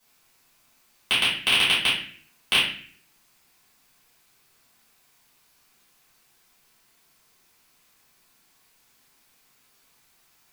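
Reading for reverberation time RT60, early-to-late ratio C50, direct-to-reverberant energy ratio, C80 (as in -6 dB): 0.50 s, 3.0 dB, -10.5 dB, 8.0 dB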